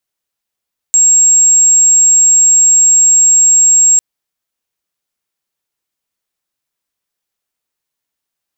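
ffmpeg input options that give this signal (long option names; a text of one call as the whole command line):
ffmpeg -f lavfi -i "aevalsrc='0.596*sin(2*PI*7560*t)':duration=3.05:sample_rate=44100" out.wav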